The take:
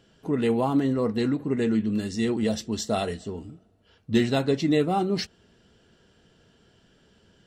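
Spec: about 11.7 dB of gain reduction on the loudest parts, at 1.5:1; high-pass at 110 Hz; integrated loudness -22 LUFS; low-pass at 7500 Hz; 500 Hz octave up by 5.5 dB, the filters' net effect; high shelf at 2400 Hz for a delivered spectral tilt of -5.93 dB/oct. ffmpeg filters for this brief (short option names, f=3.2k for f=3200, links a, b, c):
-af "highpass=110,lowpass=7.5k,equalizer=f=500:t=o:g=7,highshelf=f=2.4k:g=-6,acompressor=threshold=-48dB:ratio=1.5,volume=11.5dB"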